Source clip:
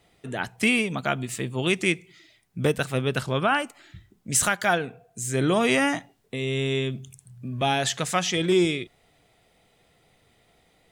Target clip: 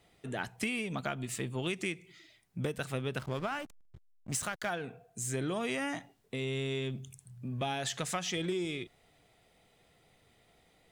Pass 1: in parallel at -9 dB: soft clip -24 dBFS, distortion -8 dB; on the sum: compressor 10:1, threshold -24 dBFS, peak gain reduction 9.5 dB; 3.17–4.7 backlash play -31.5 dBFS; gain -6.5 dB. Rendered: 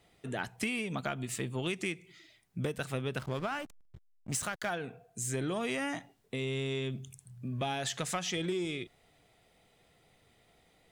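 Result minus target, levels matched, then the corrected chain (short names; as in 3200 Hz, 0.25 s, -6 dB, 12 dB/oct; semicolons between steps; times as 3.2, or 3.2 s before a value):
soft clip: distortion -6 dB
in parallel at -9 dB: soft clip -36 dBFS, distortion -3 dB; on the sum: compressor 10:1, threshold -24 dBFS, peak gain reduction 9 dB; 3.17–4.7 backlash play -31.5 dBFS; gain -6.5 dB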